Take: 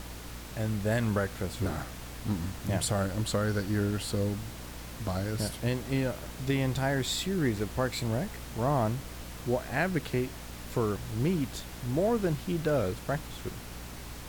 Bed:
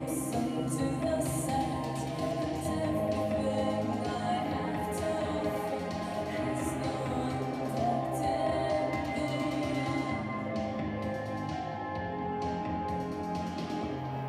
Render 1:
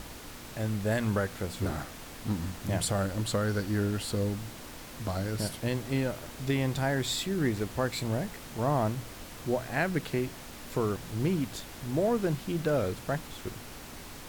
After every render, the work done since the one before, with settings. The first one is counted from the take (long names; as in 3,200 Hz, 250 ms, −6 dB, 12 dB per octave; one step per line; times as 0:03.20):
hum removal 60 Hz, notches 3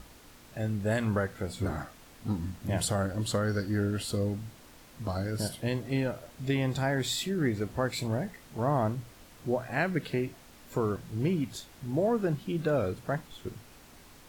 noise reduction from a noise print 9 dB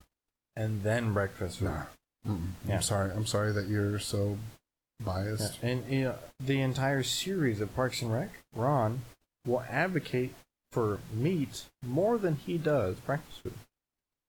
noise gate −47 dBFS, range −39 dB
parametric band 210 Hz −5.5 dB 0.3 octaves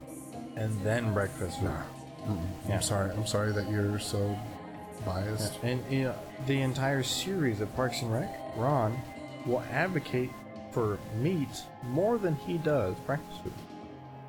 mix in bed −10.5 dB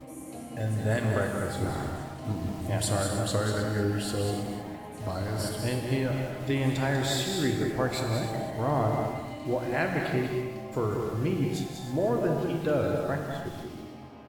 single-tap delay 193 ms −7.5 dB
reverb whose tail is shaped and stops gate 340 ms flat, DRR 3 dB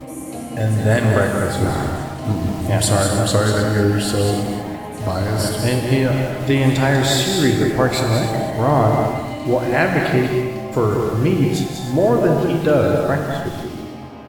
level +11.5 dB